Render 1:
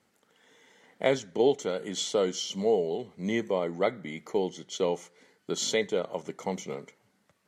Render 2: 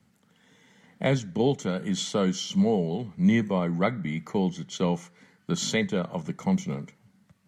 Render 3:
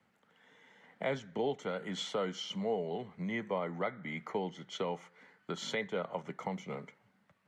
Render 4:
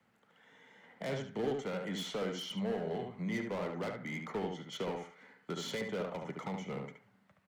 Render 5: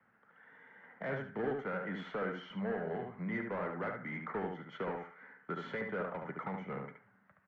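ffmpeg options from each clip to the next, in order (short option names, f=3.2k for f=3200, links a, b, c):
-filter_complex "[0:a]lowshelf=f=260:t=q:w=1.5:g=11.5,acrossover=split=280|1100|1700[a][b][c][d];[c]dynaudnorm=f=350:g=9:m=9dB[e];[a][b][e][d]amix=inputs=4:normalize=0"
-filter_complex "[0:a]alimiter=limit=-20dB:level=0:latency=1:release=345,acrossover=split=370 3200:gain=0.2 1 0.2[a][b][c];[a][b][c]amix=inputs=3:normalize=0"
-filter_complex "[0:a]acrossover=split=380[a][b];[b]asoftclip=type=hard:threshold=-38.5dB[c];[a][c]amix=inputs=2:normalize=0,asplit=2[d][e];[e]adelay=72,lowpass=f=2.4k:p=1,volume=-3.5dB,asplit=2[f][g];[g]adelay=72,lowpass=f=2.4k:p=1,volume=0.22,asplit=2[h][i];[i]adelay=72,lowpass=f=2.4k:p=1,volume=0.22[j];[d][f][h][j]amix=inputs=4:normalize=0"
-af "lowpass=f=1.6k:t=q:w=2.9,volume=-2dB"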